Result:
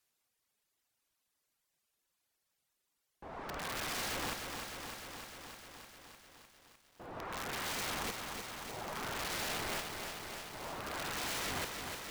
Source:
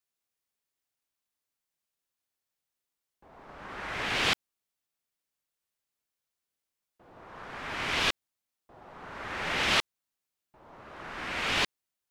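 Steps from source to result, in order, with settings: reverb removal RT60 1.2 s; treble ducked by the level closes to 790 Hz, closed at -27 dBFS; compressor 3:1, threshold -47 dBFS, peak gain reduction 11.5 dB; wrapped overs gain 42 dB; lo-fi delay 0.303 s, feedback 80%, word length 12-bit, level -6 dB; gain +8.5 dB

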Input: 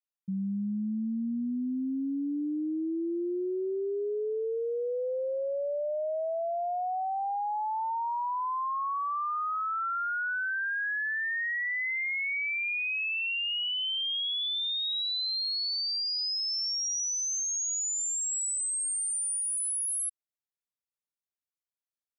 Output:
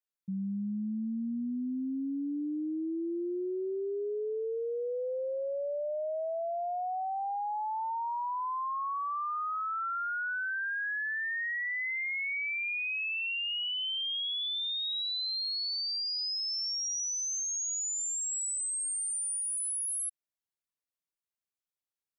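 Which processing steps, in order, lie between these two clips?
12.14–14.27 low shelf 170 Hz +11.5 dB; gain -2.5 dB

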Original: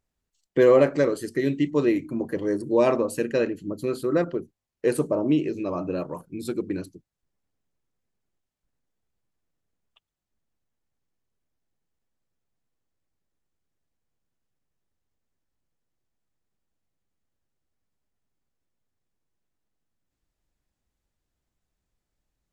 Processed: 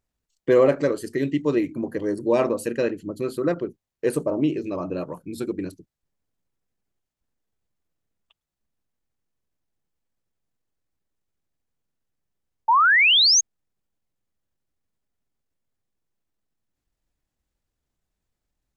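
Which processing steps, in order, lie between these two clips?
tempo 1.2×; painted sound rise, 12.68–13.41, 860–6700 Hz -16 dBFS

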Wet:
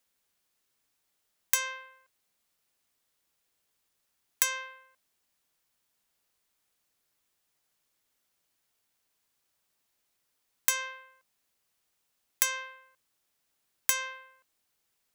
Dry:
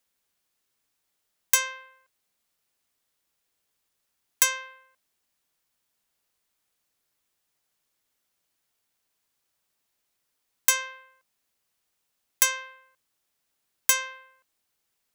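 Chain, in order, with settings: compressor, threshold -22 dBFS, peak gain reduction 7.5 dB

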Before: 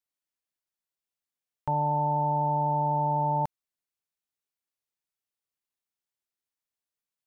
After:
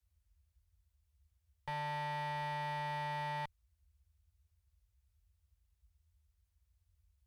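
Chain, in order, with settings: tube stage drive 40 dB, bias 0.25; band noise 42–86 Hz -75 dBFS; slew limiter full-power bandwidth 21 Hz; gain +2 dB

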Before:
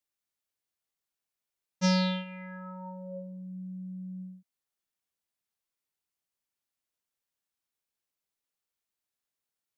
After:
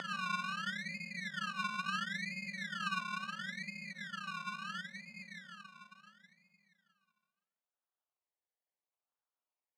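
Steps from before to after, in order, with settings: gate with hold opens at -37 dBFS; Paulstretch 21×, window 0.05 s, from 4.08; decimation with a swept rate 27×, swing 60% 0.73 Hz; BPF 740–3600 Hz; gain +14 dB

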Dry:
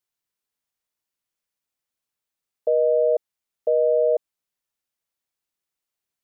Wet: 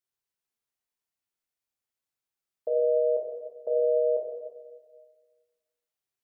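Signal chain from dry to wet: plate-style reverb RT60 1.5 s, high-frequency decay 0.75×, DRR -1.5 dB; gain -8 dB

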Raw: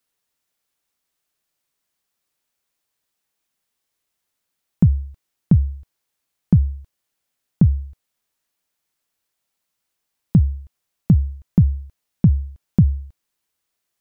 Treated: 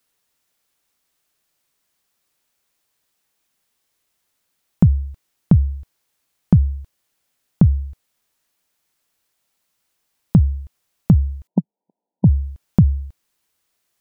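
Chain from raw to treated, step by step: in parallel at +2.5 dB: compressor, threshold -22 dBFS, peak gain reduction 12.5 dB; 11.47–12.25 on the sum: brick-wall FIR band-pass 170–1000 Hz; gain -1.5 dB

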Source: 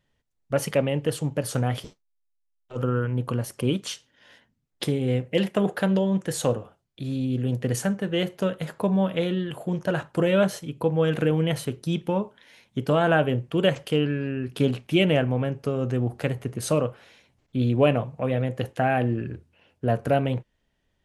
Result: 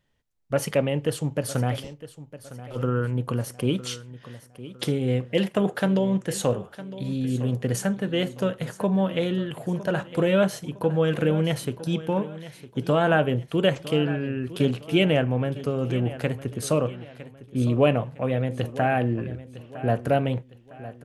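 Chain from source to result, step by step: 16.88–17.65 Bessel low-pass 2600 Hz, order 2; feedback echo 0.958 s, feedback 38%, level -15.5 dB

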